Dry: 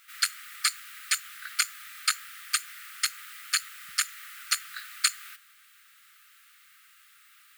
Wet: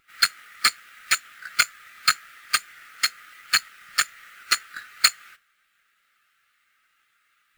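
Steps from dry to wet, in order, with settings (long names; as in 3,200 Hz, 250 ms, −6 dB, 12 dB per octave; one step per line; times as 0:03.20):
each half-wave held at its own peak
every bin expanded away from the loudest bin 1.5 to 1
level +4.5 dB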